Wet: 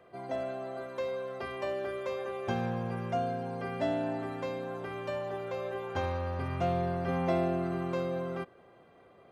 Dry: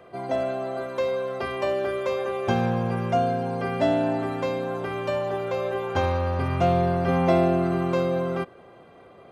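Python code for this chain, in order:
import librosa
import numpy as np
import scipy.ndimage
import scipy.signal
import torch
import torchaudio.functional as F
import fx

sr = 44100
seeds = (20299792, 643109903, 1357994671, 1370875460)

y = fx.peak_eq(x, sr, hz=1800.0, db=3.0, octaves=0.26)
y = y * librosa.db_to_amplitude(-9.0)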